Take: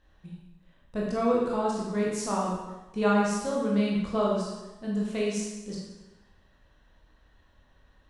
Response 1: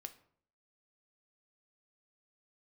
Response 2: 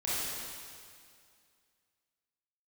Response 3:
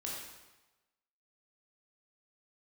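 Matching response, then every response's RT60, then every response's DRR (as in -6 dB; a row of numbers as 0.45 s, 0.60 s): 3; 0.60 s, 2.2 s, 1.1 s; 8.0 dB, -10.0 dB, -4.5 dB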